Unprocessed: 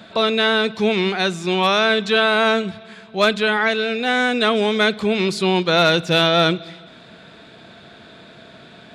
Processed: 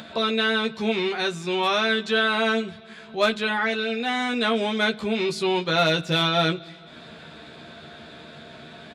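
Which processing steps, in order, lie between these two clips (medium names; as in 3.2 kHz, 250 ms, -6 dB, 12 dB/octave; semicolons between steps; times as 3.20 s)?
doubling 13 ms -3 dB; upward compressor, threshold -28 dBFS; trim -7 dB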